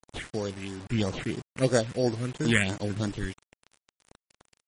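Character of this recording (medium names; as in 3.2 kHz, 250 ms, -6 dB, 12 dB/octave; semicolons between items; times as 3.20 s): aliases and images of a low sample rate 5.1 kHz, jitter 0%; phasing stages 4, 3 Hz, lowest notch 750–2900 Hz; a quantiser's noise floor 8-bit, dither none; MP3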